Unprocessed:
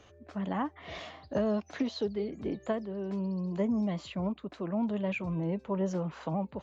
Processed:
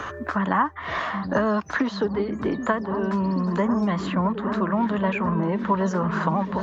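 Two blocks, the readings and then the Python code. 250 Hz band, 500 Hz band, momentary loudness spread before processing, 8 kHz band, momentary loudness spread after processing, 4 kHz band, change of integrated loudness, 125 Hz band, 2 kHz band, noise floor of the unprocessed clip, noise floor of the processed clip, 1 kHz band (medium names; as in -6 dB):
+8.5 dB, +7.5 dB, 7 LU, no reading, 4 LU, +7.0 dB, +9.5 dB, +8.5 dB, +15.5 dB, -59 dBFS, -36 dBFS, +16.0 dB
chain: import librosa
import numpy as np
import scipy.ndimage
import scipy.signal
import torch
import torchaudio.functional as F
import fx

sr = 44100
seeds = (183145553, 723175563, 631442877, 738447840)

y = fx.band_shelf(x, sr, hz=1300.0, db=12.5, octaves=1.2)
y = fx.echo_opening(y, sr, ms=777, hz=200, octaves=1, feedback_pct=70, wet_db=-6)
y = fx.band_squash(y, sr, depth_pct=70)
y = y * 10.0 ** (6.5 / 20.0)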